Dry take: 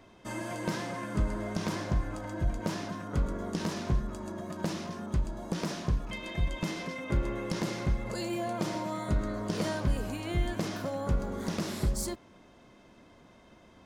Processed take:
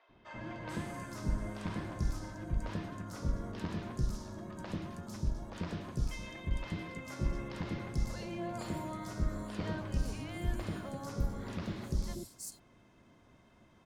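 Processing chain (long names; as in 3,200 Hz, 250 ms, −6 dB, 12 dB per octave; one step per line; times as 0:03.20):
sub-octave generator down 1 octave, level −3 dB
three-band delay without the direct sound mids, lows, highs 90/440 ms, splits 540/4,400 Hz
level −6 dB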